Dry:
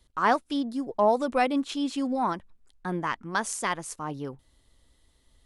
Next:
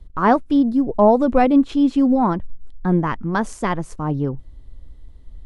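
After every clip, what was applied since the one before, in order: tilt -4 dB/oct; gain +5.5 dB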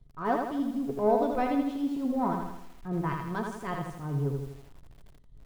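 transient shaper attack -11 dB, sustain -7 dB; resonator 140 Hz, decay 0.21 s, harmonics odd, mix 80%; lo-fi delay 81 ms, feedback 55%, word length 9-bit, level -4 dB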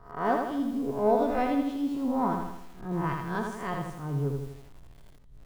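spectral swells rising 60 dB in 0.43 s

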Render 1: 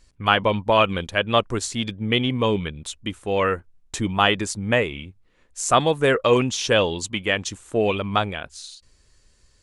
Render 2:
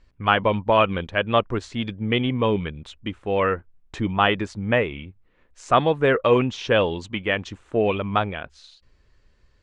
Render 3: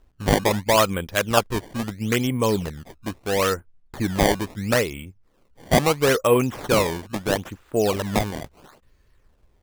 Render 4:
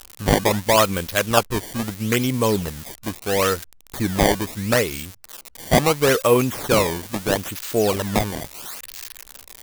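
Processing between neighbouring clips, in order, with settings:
LPF 2700 Hz 12 dB/oct
decimation with a swept rate 19×, swing 160% 0.75 Hz
switching spikes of -21 dBFS; gain +1.5 dB

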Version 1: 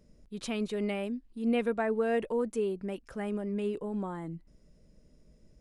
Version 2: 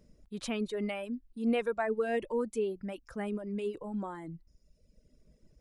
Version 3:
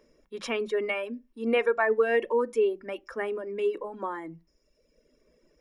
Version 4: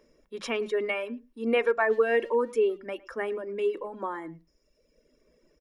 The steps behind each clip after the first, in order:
reverb removal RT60 1.3 s
reverb RT60 0.25 s, pre-delay 3 ms, DRR 16 dB
speakerphone echo 0.11 s, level -21 dB

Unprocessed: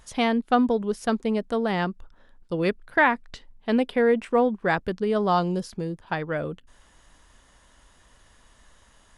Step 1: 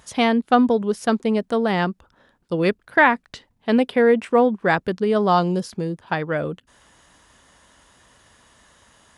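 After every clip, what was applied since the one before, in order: HPF 85 Hz 12 dB/oct; gain +4.5 dB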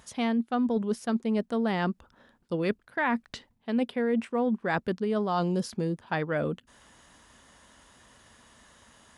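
bell 230 Hz +6 dB 0.23 oct; reverse; compressor 6:1, threshold -22 dBFS, peak gain reduction 12.5 dB; reverse; gain -2.5 dB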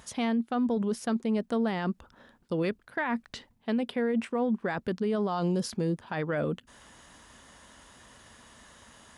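limiter -24.5 dBFS, peak gain reduction 10.5 dB; gain +3 dB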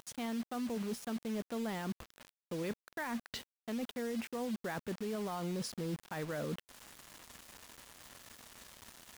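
reverse; compressor 4:1, threshold -37 dBFS, peak gain reduction 11 dB; reverse; soft clip -25.5 dBFS, distortion -31 dB; bit-crush 8-bit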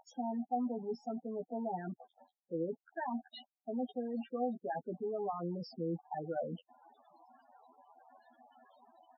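speaker cabinet 210–7400 Hz, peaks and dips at 760 Hz +9 dB, 2200 Hz -8 dB, 6400 Hz -5 dB; doubler 12 ms -4 dB; loudest bins only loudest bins 8

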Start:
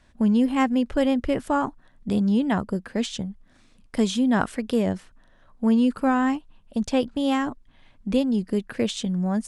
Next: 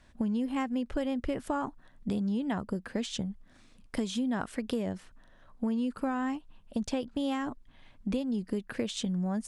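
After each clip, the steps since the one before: compressor, threshold -27 dBFS, peak gain reduction 11 dB; gain -1.5 dB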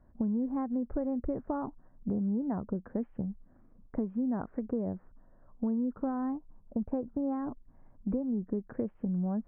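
Gaussian blur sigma 7.8 samples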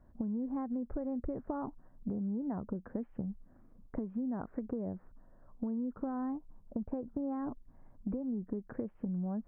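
compressor, threshold -33 dBFS, peak gain reduction 7 dB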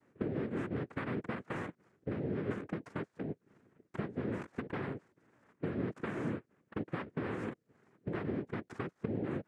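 noise vocoder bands 3; gain -1 dB

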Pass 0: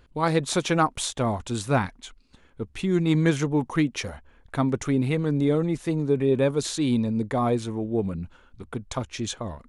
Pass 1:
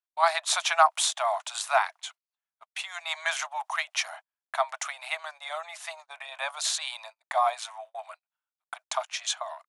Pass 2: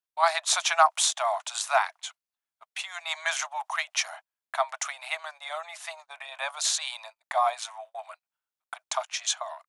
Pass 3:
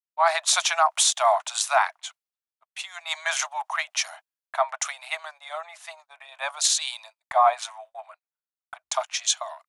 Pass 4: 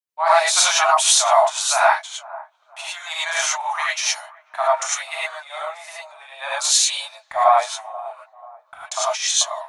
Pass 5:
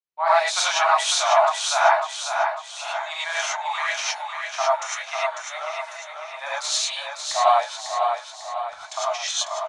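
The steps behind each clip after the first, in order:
Chebyshev high-pass 630 Hz, order 8; gate -49 dBFS, range -39 dB; gain +4 dB
dynamic EQ 6300 Hz, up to +4 dB, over -43 dBFS, Q 1.8
limiter -16.5 dBFS, peak gain reduction 9.5 dB; three-band expander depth 70%; gain +3.5 dB
band-limited delay 0.486 s, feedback 39%, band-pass 670 Hz, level -19 dB; non-linear reverb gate 0.13 s rising, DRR -7 dB; gain -2 dB
air absorption 88 m; feedback echo 0.548 s, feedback 47%, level -5.5 dB; gain -2.5 dB

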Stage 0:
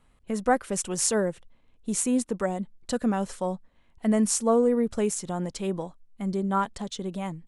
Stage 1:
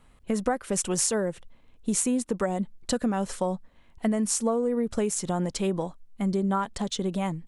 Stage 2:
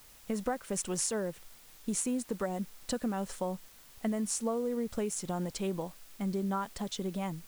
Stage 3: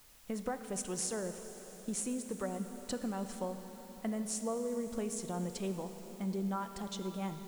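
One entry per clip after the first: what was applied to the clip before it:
compressor 10:1, threshold -27 dBFS, peak gain reduction 11.5 dB; gain +5 dB
added noise white -50 dBFS; gain -7 dB
plate-style reverb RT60 5 s, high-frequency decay 0.8×, DRR 7.5 dB; gain -4.5 dB

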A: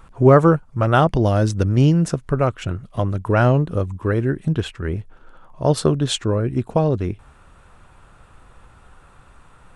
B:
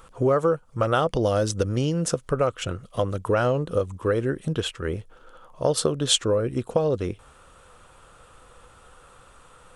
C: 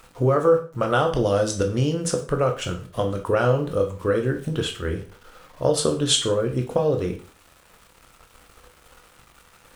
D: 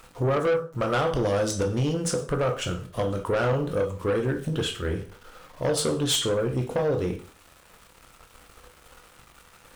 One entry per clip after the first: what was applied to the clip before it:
thirty-one-band EQ 500 Hz +10 dB, 1250 Hz +5 dB, 3150 Hz +5 dB; compressor 6:1, threshold -14 dBFS, peak gain reduction 10.5 dB; tone controls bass -4 dB, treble +9 dB; gain -3 dB
sample gate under -46.5 dBFS; reverb RT60 0.40 s, pre-delay 7 ms, DRR 3.5 dB
soft clip -19 dBFS, distortion -11 dB

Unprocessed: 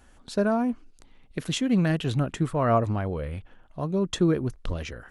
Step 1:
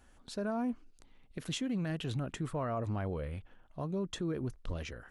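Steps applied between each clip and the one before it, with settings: limiter -21 dBFS, peak gain reduction 9 dB; gain -6.5 dB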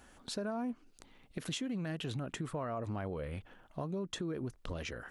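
low shelf 80 Hz -11 dB; compressor 3:1, threshold -44 dBFS, peak gain reduction 9 dB; gain +6.5 dB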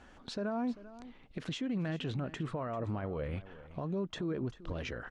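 limiter -31.5 dBFS, peak gain reduction 8 dB; air absorption 120 m; echo 0.393 s -16.5 dB; gain +3.5 dB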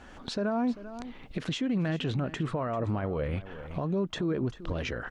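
recorder AGC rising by 18 dB/s; gain +6 dB

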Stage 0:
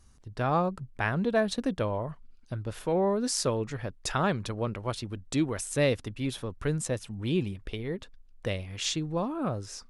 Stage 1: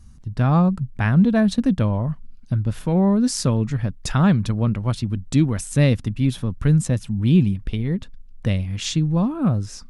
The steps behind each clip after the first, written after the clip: resonant low shelf 290 Hz +9.5 dB, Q 1.5; gain +3.5 dB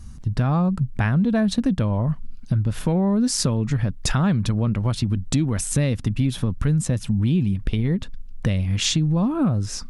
in parallel at +2 dB: limiter -16 dBFS, peak gain reduction 10.5 dB; on the sum: compressor 4:1, threshold -18 dBFS, peak gain reduction 9.5 dB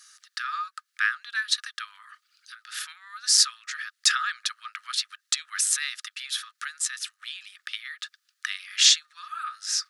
rippled Chebyshev high-pass 1200 Hz, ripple 6 dB; gain +8 dB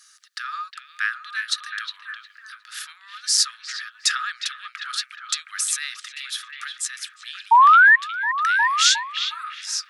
painted sound rise, 7.51–7.96, 890–1900 Hz -11 dBFS; on a send: delay with a stepping band-pass 0.359 s, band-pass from 2800 Hz, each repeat -0.7 oct, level -5 dB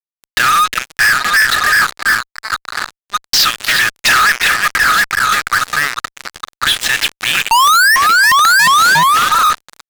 LFO low-pass saw down 0.3 Hz 940–3300 Hz; fuzz box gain 39 dB, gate -37 dBFS; gain +5 dB

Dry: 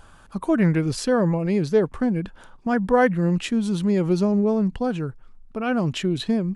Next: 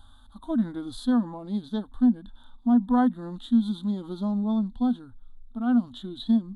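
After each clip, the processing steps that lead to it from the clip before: bell 2400 Hz -8 dB 0.56 oct; harmonic-percussive split percussive -14 dB; EQ curve 100 Hz 0 dB, 150 Hz -29 dB, 240 Hz +4 dB, 420 Hz -23 dB, 780 Hz -5 dB, 1400 Hz -7 dB, 2500 Hz -23 dB, 3600 Hz +13 dB, 5300 Hz -18 dB, 10000 Hz -3 dB; gain +1.5 dB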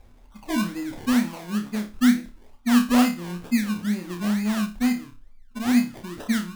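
decimation with a swept rate 27×, swing 60% 2.2 Hz; on a send: flutter echo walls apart 4.9 m, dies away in 0.3 s

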